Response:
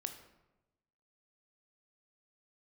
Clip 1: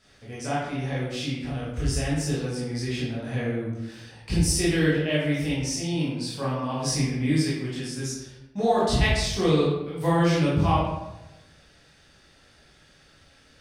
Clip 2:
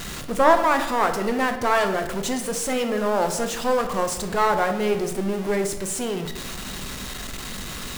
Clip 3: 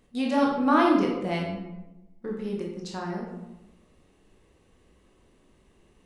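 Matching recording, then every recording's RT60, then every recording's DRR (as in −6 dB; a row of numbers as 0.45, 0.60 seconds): 2; 1.0, 1.0, 1.0 seconds; −8.0, 6.5, −2.0 decibels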